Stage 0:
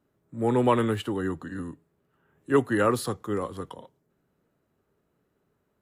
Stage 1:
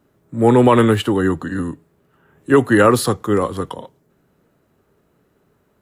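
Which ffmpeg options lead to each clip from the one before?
-af "alimiter=level_in=4.47:limit=0.891:release=50:level=0:latency=1,volume=0.891"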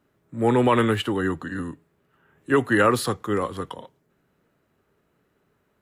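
-af "equalizer=f=2200:w=0.68:g=5.5,volume=0.398"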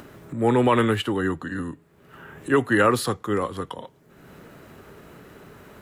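-af "acompressor=mode=upward:threshold=0.0447:ratio=2.5"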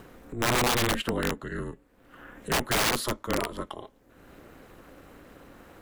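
-af "aeval=exprs='val(0)*sin(2*PI*120*n/s)':c=same,aeval=exprs='0.398*(cos(1*acos(clip(val(0)/0.398,-1,1)))-cos(1*PI/2))+0.0178*(cos(3*acos(clip(val(0)/0.398,-1,1)))-cos(3*PI/2))':c=same,aeval=exprs='(mod(7.5*val(0)+1,2)-1)/7.5':c=same"

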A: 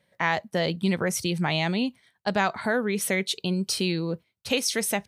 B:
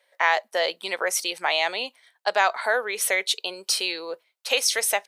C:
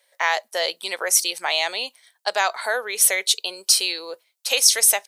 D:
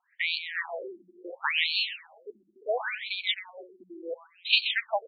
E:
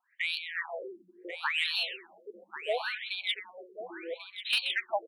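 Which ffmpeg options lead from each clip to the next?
-af "highpass=f=520:w=0.5412,highpass=f=520:w=1.3066,volume=1.68"
-af "bass=f=250:g=-5,treble=f=4000:g=11,volume=0.891"
-filter_complex "[0:a]asplit=2[s0][s1];[s1]aecho=0:1:130|260|390|520|650:0.355|0.156|0.0687|0.0302|0.0133[s2];[s0][s2]amix=inputs=2:normalize=0,afftfilt=real='re*between(b*sr/1024,240*pow(3300/240,0.5+0.5*sin(2*PI*0.71*pts/sr))/1.41,240*pow(3300/240,0.5+0.5*sin(2*PI*0.71*pts/sr))*1.41)':imag='im*between(b*sr/1024,240*pow(3300/240,0.5+0.5*sin(2*PI*0.71*pts/sr))/1.41,240*pow(3300/240,0.5+0.5*sin(2*PI*0.71*pts/sr))*1.41)':win_size=1024:overlap=0.75"
-filter_complex "[0:a]acrossover=split=460|1800[s0][s1][s2];[s2]asoftclip=type=tanh:threshold=0.126[s3];[s0][s1][s3]amix=inputs=3:normalize=0,aecho=1:1:1091:0.282,volume=0.75"

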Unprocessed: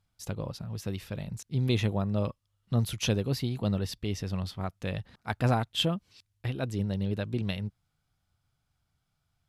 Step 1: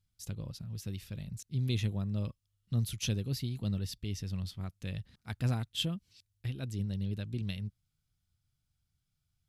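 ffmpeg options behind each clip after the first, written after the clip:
-af "equalizer=f=790:t=o:w=2.7:g=-14.5,volume=0.841"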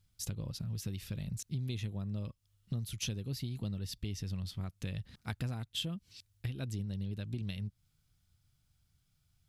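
-af "acompressor=threshold=0.00794:ratio=6,volume=2.24"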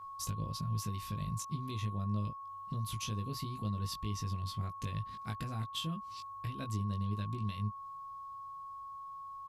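-filter_complex "[0:a]alimiter=level_in=1.88:limit=0.0631:level=0:latency=1:release=157,volume=0.531,aeval=exprs='val(0)+0.00447*sin(2*PI*1100*n/s)':c=same,asplit=2[s0][s1];[s1]adelay=19,volume=0.631[s2];[s0][s2]amix=inputs=2:normalize=0"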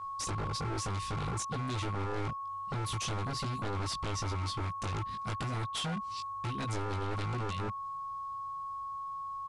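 -af "aeval=exprs='0.0158*(abs(mod(val(0)/0.0158+3,4)-2)-1)':c=same,aresample=22050,aresample=44100,volume=2.11"

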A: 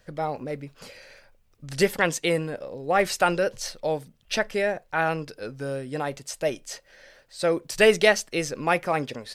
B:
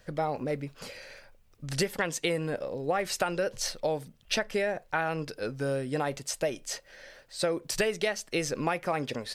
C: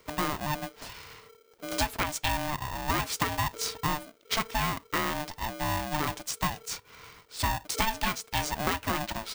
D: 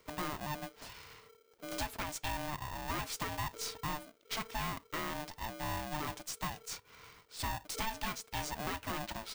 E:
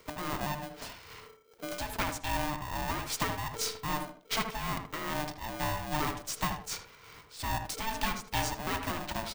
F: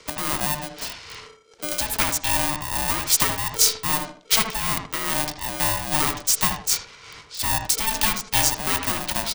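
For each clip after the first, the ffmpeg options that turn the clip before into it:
-af "acompressor=threshold=0.0501:ratio=16,volume=1.19"
-af "aeval=exprs='val(0)*sgn(sin(2*PI*450*n/s))':c=same"
-af "aeval=exprs='(tanh(20*val(0)+0.3)-tanh(0.3))/20':c=same,volume=0.531"
-filter_complex "[0:a]tremolo=f=2.5:d=0.62,asplit=2[s0][s1];[s1]adelay=78,lowpass=f=1800:p=1,volume=0.501,asplit=2[s2][s3];[s3]adelay=78,lowpass=f=1800:p=1,volume=0.28,asplit=2[s4][s5];[s5]adelay=78,lowpass=f=1800:p=1,volume=0.28,asplit=2[s6][s7];[s7]adelay=78,lowpass=f=1800:p=1,volume=0.28[s8];[s0][s2][s4][s6][s8]amix=inputs=5:normalize=0,volume=2.37"
-filter_complex "[0:a]acrossover=split=260|6900[s0][s1][s2];[s2]aeval=exprs='val(0)*gte(abs(val(0)),0.00596)':c=same[s3];[s0][s1][s3]amix=inputs=3:normalize=0,crystalizer=i=3.5:c=0,volume=2"

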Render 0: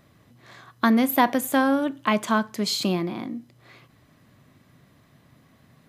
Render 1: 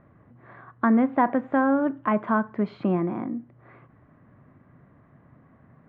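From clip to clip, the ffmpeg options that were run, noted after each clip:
-filter_complex "[0:a]lowpass=f=1700:w=0.5412,lowpass=f=1700:w=1.3066,asplit=2[s0][s1];[s1]alimiter=limit=0.133:level=0:latency=1:release=176,volume=1[s2];[s0][s2]amix=inputs=2:normalize=0,volume=0.631"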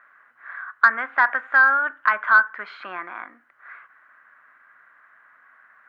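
-filter_complex "[0:a]highpass=f=1500:t=q:w=4.8,asplit=2[s0][s1];[s1]acontrast=58,volume=0.708[s2];[s0][s2]amix=inputs=2:normalize=0,volume=0.75"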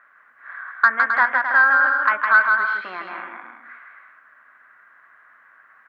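-af "aecho=1:1:160|264|331.6|375.5|404.1:0.631|0.398|0.251|0.158|0.1"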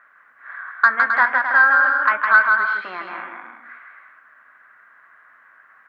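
-af "flanger=delay=4:depth=9.2:regen=-78:speed=0.41:shape=triangular,volume=1.88"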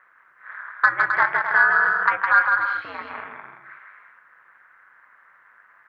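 -af "aeval=exprs='val(0)*sin(2*PI*100*n/s)':c=same"

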